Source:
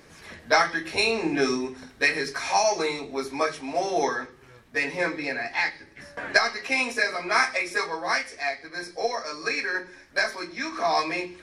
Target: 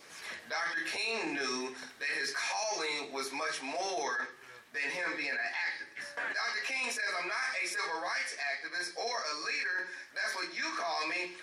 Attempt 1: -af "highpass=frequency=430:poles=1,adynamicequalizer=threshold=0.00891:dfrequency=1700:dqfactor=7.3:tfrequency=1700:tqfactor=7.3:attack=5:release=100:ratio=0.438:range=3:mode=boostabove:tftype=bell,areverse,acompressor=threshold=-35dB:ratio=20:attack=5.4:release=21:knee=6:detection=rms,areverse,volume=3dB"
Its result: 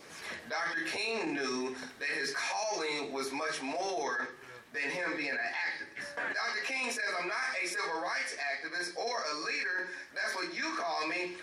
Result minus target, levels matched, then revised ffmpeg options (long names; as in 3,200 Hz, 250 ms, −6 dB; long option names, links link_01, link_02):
500 Hz band +2.5 dB
-af "highpass=frequency=1100:poles=1,adynamicequalizer=threshold=0.00891:dfrequency=1700:dqfactor=7.3:tfrequency=1700:tqfactor=7.3:attack=5:release=100:ratio=0.438:range=3:mode=boostabove:tftype=bell,areverse,acompressor=threshold=-35dB:ratio=20:attack=5.4:release=21:knee=6:detection=rms,areverse,volume=3dB"